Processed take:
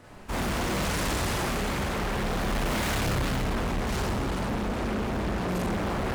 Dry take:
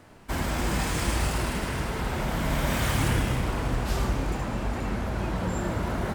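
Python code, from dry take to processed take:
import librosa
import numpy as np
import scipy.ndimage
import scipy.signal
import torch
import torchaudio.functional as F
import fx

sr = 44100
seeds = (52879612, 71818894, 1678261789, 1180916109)

y = fx.rev_schroeder(x, sr, rt60_s=0.42, comb_ms=30, drr_db=-3.0)
y = 10.0 ** (-23.5 / 20.0) * np.tanh(y / 10.0 ** (-23.5 / 20.0))
y = fx.doppler_dist(y, sr, depth_ms=0.92)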